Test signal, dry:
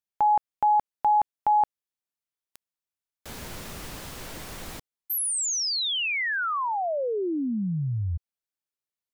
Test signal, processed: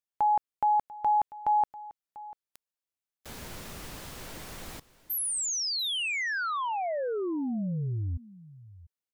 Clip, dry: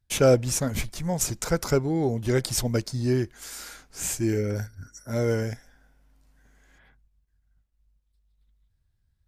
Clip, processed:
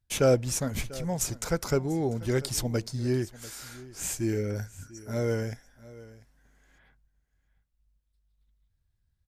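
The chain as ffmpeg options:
-af "aecho=1:1:693:0.112,volume=-3.5dB"

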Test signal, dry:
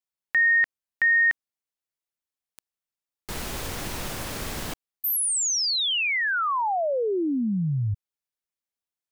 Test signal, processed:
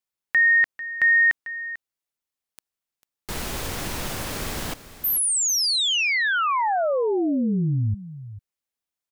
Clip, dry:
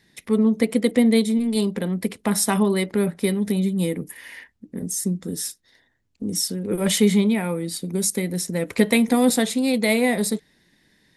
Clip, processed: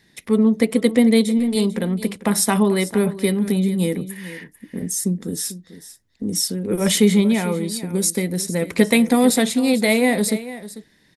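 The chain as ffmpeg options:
-af "aecho=1:1:445:0.178,volume=2.5dB"

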